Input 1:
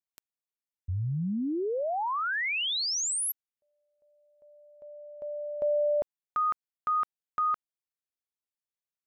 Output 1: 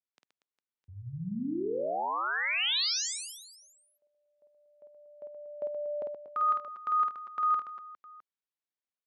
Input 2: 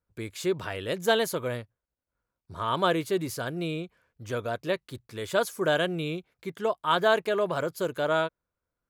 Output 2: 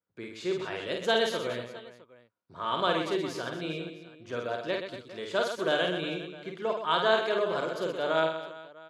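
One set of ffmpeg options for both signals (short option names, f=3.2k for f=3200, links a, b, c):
-filter_complex "[0:a]highpass=190,lowpass=4.1k,asplit=2[a][b];[b]aecho=0:1:50|125|237.5|406.2|659.4:0.631|0.398|0.251|0.158|0.1[c];[a][c]amix=inputs=2:normalize=0,adynamicequalizer=threshold=0.00794:dfrequency=3000:dqfactor=0.7:tfrequency=3000:tqfactor=0.7:attack=5:release=100:ratio=0.375:range=4:mode=boostabove:tftype=highshelf,volume=-4dB"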